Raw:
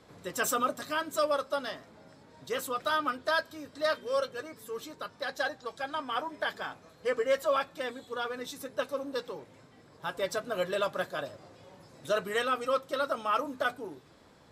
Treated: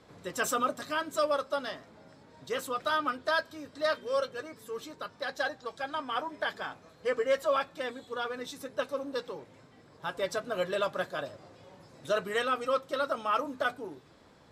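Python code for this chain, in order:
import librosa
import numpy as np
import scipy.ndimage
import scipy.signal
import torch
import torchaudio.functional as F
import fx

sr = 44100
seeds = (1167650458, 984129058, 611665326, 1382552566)

y = fx.high_shelf(x, sr, hz=12000.0, db=-9.5)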